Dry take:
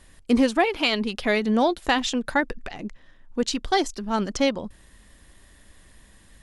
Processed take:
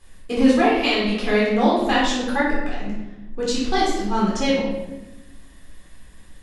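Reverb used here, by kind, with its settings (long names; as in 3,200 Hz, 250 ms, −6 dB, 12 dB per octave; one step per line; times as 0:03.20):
rectangular room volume 450 cubic metres, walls mixed, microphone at 3.9 metres
level −7 dB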